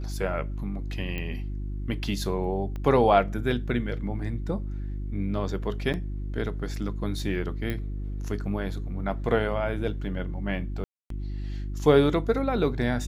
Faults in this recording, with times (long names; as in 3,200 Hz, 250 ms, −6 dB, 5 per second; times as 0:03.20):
mains hum 50 Hz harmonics 7 −32 dBFS
0:01.18: click −20 dBFS
0:02.76: click −24 dBFS
0:05.93–0:05.94: drop-out 8.5 ms
0:07.70: click −18 dBFS
0:10.84–0:11.10: drop-out 263 ms